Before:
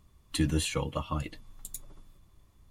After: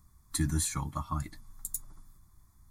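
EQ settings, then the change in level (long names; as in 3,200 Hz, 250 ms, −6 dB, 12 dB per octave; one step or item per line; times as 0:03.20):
high-shelf EQ 3,900 Hz +7 dB
phaser with its sweep stopped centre 1,200 Hz, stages 4
0.0 dB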